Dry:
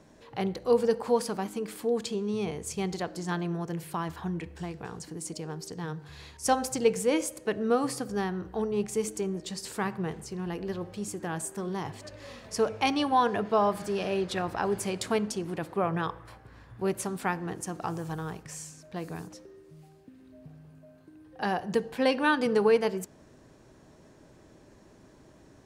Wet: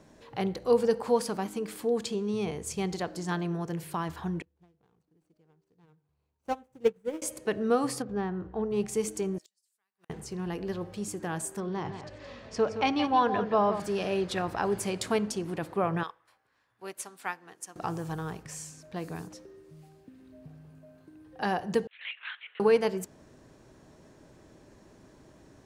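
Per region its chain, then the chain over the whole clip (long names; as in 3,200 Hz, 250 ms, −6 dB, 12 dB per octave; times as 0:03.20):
0:04.42–0:07.22: running median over 25 samples + dynamic equaliser 4,500 Hz, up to −6 dB, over −57 dBFS, Q 1.8 + expander for the loud parts 2.5 to 1, over −37 dBFS
0:08.02–0:08.71: running median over 9 samples + head-to-tape spacing loss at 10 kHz 27 dB
0:09.38–0:10.10: first difference + gate with flip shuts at −43 dBFS, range −36 dB
0:11.60–0:13.80: high-frequency loss of the air 120 metres + single-tap delay 169 ms −9.5 dB
0:16.03–0:17.76: high-pass filter 1,200 Hz 6 dB per octave + expander for the loud parts, over −55 dBFS
0:21.87–0:22.60: linear-prediction vocoder at 8 kHz whisper + four-pole ladder high-pass 1,900 Hz, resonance 45%
whole clip: no processing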